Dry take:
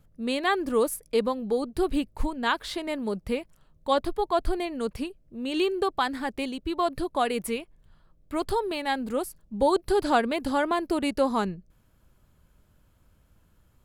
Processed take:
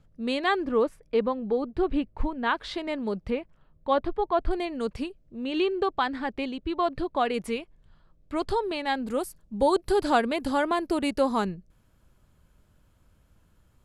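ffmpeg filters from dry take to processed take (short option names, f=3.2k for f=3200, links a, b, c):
-af "asetnsamples=n=441:p=0,asendcmd='0.66 lowpass f 2600;2.57 lowpass f 4900;3.3 lowpass f 2600;4.51 lowpass f 6800;5.44 lowpass f 3900;7.34 lowpass f 6500;9.07 lowpass f 12000',lowpass=6.4k"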